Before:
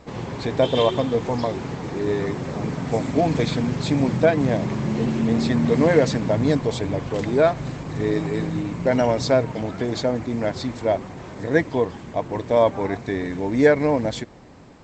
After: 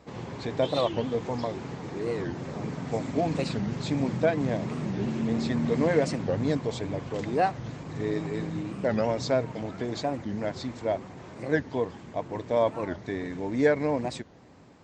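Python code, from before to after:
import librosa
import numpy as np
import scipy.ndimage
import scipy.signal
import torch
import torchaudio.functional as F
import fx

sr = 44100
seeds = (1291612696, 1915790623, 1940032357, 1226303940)

y = scipy.signal.sosfilt(scipy.signal.butter(2, 63.0, 'highpass', fs=sr, output='sos'), x)
y = fx.record_warp(y, sr, rpm=45.0, depth_cents=250.0)
y = F.gain(torch.from_numpy(y), -7.0).numpy()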